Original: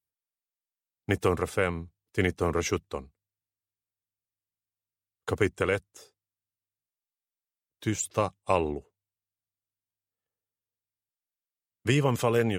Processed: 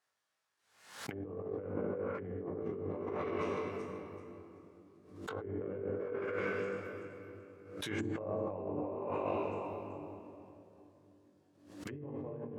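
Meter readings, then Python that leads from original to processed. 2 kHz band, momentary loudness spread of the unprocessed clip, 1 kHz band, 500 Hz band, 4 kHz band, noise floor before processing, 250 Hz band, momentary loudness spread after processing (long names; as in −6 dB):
−11.0 dB, 14 LU, −9.0 dB, −7.0 dB, −11.5 dB, below −85 dBFS, −8.0 dB, 17 LU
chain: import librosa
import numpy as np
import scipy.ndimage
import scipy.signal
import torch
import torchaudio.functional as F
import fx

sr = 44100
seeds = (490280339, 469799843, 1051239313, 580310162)

p1 = fx.reverse_delay_fb(x, sr, ms=191, feedback_pct=49, wet_db=-9.5)
p2 = fx.low_shelf(p1, sr, hz=140.0, db=-8.5)
p3 = p2 + fx.room_flutter(p2, sr, wall_m=3.5, rt60_s=0.25, dry=0)
p4 = np.repeat(p3[::3], 3)[:len(p3)]
p5 = fx.low_shelf(p4, sr, hz=420.0, db=-8.0)
p6 = fx.room_shoebox(p5, sr, seeds[0], volume_m3=140.0, walls='hard', distance_m=0.41)
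p7 = fx.env_lowpass_down(p6, sr, base_hz=380.0, full_db=-25.5)
p8 = fx.over_compress(p7, sr, threshold_db=-39.0, ratio=-1.0)
p9 = scipy.signal.sosfilt(scipy.signal.butter(2, 91.0, 'highpass', fs=sr, output='sos'), p8)
y = fx.pre_swell(p9, sr, db_per_s=86.0)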